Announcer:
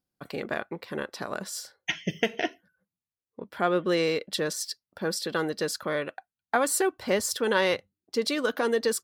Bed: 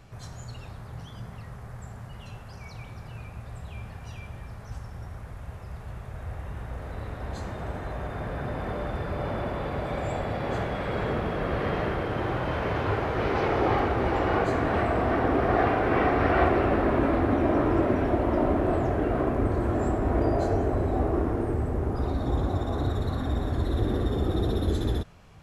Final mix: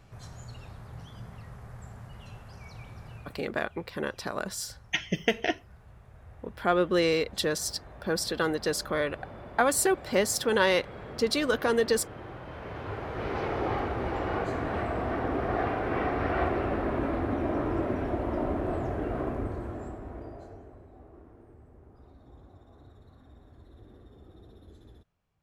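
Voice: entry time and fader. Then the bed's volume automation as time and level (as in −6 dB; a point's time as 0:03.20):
3.05 s, +0.5 dB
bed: 0:03.12 −4 dB
0:03.54 −14 dB
0:12.45 −14 dB
0:13.33 −6 dB
0:19.30 −6 dB
0:20.89 −26.5 dB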